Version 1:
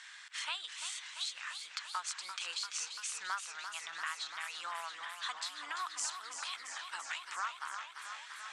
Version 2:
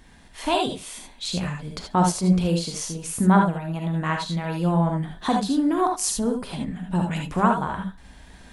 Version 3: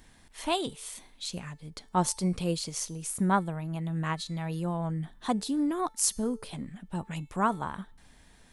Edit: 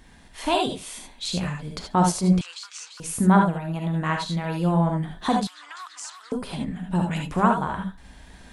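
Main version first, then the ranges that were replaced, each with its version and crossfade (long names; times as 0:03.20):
2
0:02.41–0:03.00: punch in from 1
0:05.47–0:06.32: punch in from 1
not used: 3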